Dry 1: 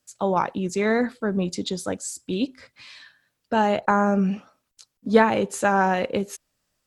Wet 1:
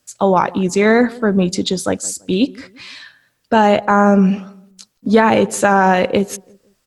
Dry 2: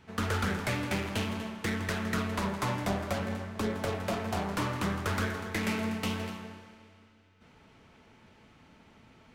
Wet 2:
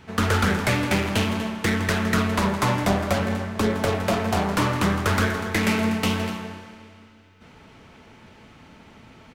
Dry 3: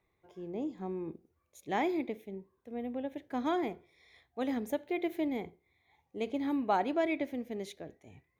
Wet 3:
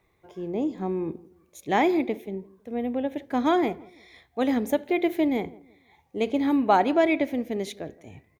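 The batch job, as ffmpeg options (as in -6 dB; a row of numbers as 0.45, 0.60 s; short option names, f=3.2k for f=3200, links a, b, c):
-filter_complex "[0:a]asplit=2[a][b];[b]adelay=167,lowpass=f=1.2k:p=1,volume=-21.5dB,asplit=2[c][d];[d]adelay=167,lowpass=f=1.2k:p=1,volume=0.35,asplit=2[e][f];[f]adelay=167,lowpass=f=1.2k:p=1,volume=0.35[g];[c][e][g]amix=inputs=3:normalize=0[h];[a][h]amix=inputs=2:normalize=0,alimiter=level_in=10.5dB:limit=-1dB:release=50:level=0:latency=1,volume=-1dB"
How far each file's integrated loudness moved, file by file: +8.0, +9.5, +9.5 LU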